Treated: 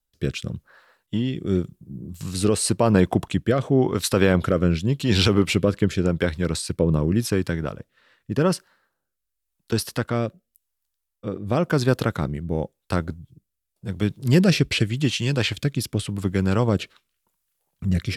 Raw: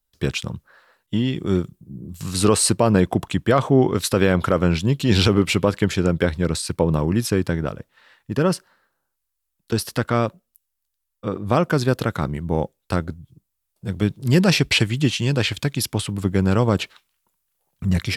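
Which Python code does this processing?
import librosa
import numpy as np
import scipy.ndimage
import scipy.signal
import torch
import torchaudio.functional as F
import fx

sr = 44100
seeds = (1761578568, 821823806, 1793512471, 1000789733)

y = fx.rotary(x, sr, hz=0.9)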